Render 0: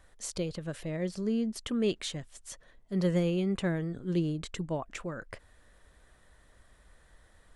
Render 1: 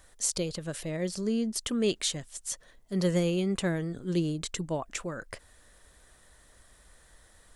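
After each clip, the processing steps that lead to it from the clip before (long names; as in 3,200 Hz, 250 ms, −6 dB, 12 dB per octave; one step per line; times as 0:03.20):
bass and treble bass −2 dB, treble +9 dB
level +2 dB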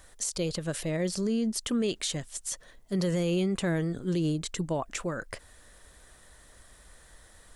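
brickwall limiter −24.5 dBFS, peak gain reduction 11 dB
level +3.5 dB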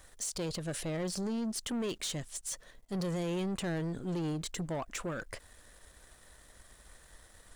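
leveller curve on the samples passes 2
level −9 dB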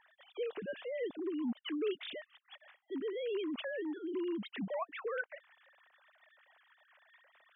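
three sine waves on the formant tracks
level −3 dB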